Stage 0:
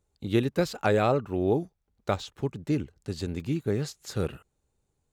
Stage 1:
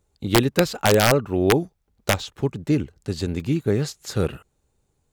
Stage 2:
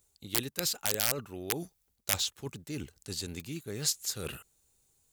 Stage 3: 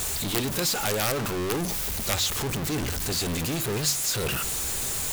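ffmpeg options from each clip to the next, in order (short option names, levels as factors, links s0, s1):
-af "aeval=exprs='(mod(4.73*val(0)+1,2)-1)/4.73':c=same,volume=2.11"
-af "areverse,acompressor=threshold=0.0447:ratio=6,areverse,crystalizer=i=7:c=0,volume=0.335"
-af "aeval=exprs='val(0)+0.5*0.0794*sgn(val(0))':c=same,bandreject=f=47.32:t=h:w=4,bandreject=f=94.64:t=h:w=4,bandreject=f=141.96:t=h:w=4,bandreject=f=189.28:t=h:w=4,bandreject=f=236.6:t=h:w=4,bandreject=f=283.92:t=h:w=4,bandreject=f=331.24:t=h:w=4,volume=0.891"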